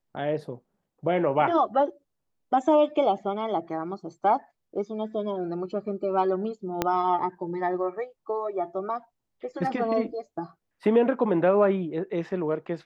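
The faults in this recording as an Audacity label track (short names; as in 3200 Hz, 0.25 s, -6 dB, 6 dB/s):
6.820000	6.820000	pop -9 dBFS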